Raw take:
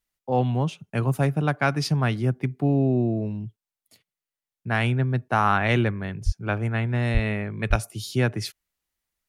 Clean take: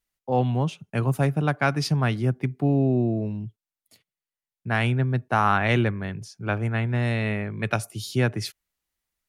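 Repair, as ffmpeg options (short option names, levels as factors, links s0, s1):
-filter_complex "[0:a]asplit=3[s0][s1][s2];[s0]afade=t=out:st=6.25:d=0.02[s3];[s1]highpass=f=140:w=0.5412,highpass=f=140:w=1.3066,afade=t=in:st=6.25:d=0.02,afade=t=out:st=6.37:d=0.02[s4];[s2]afade=t=in:st=6.37:d=0.02[s5];[s3][s4][s5]amix=inputs=3:normalize=0,asplit=3[s6][s7][s8];[s6]afade=t=out:st=7.13:d=0.02[s9];[s7]highpass=f=140:w=0.5412,highpass=f=140:w=1.3066,afade=t=in:st=7.13:d=0.02,afade=t=out:st=7.25:d=0.02[s10];[s8]afade=t=in:st=7.25:d=0.02[s11];[s9][s10][s11]amix=inputs=3:normalize=0,asplit=3[s12][s13][s14];[s12]afade=t=out:st=7.69:d=0.02[s15];[s13]highpass=f=140:w=0.5412,highpass=f=140:w=1.3066,afade=t=in:st=7.69:d=0.02,afade=t=out:st=7.81:d=0.02[s16];[s14]afade=t=in:st=7.81:d=0.02[s17];[s15][s16][s17]amix=inputs=3:normalize=0"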